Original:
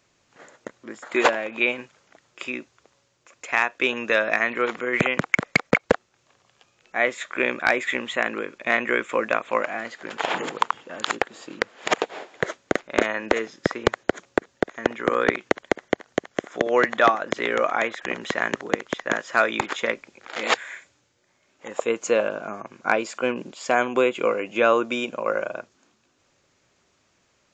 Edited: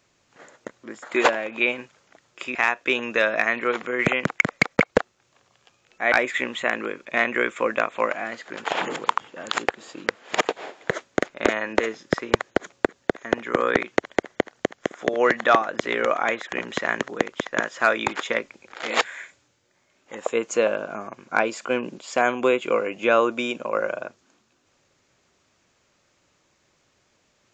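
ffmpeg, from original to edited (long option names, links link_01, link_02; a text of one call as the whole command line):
ffmpeg -i in.wav -filter_complex "[0:a]asplit=3[link_01][link_02][link_03];[link_01]atrim=end=2.552[link_04];[link_02]atrim=start=3.488:end=7.062[link_05];[link_03]atrim=start=7.648[link_06];[link_04][link_05]acrossfade=duration=0.004:curve1=hsin:curve2=hsin[link_07];[link_07][link_06]acrossfade=duration=0.004:curve1=hsin:curve2=hsin" out.wav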